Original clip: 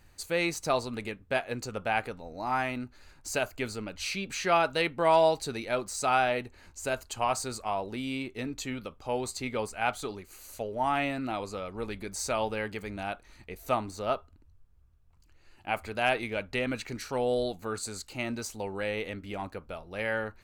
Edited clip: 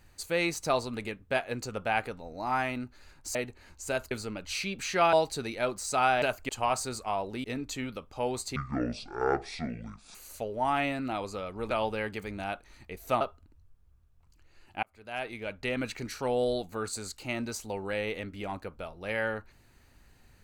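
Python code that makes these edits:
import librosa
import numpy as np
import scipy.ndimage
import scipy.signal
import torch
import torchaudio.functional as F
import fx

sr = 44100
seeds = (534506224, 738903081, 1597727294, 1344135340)

y = fx.edit(x, sr, fx.swap(start_s=3.35, length_s=0.27, other_s=6.32, other_length_s=0.76),
    fx.cut(start_s=4.64, length_s=0.59),
    fx.cut(start_s=8.03, length_s=0.3),
    fx.speed_span(start_s=9.45, length_s=0.89, speed=0.56),
    fx.cut(start_s=11.9, length_s=0.4),
    fx.cut(start_s=13.8, length_s=0.31),
    fx.fade_in_span(start_s=15.73, length_s=1.03), tone=tone)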